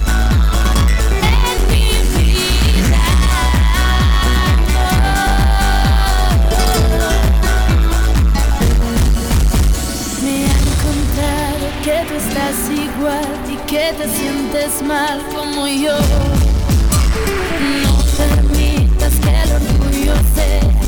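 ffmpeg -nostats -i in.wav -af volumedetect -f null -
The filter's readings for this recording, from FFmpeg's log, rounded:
mean_volume: -12.4 dB
max_volume: -7.7 dB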